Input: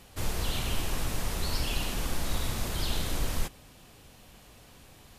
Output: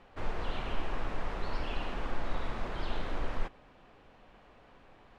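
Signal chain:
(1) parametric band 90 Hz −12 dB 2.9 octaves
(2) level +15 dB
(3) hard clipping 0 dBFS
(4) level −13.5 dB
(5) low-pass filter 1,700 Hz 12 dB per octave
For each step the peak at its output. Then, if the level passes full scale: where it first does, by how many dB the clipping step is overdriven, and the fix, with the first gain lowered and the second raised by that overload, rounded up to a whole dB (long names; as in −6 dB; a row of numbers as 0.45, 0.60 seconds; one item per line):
−19.0, −4.0, −4.0, −17.5, −19.0 dBFS
no step passes full scale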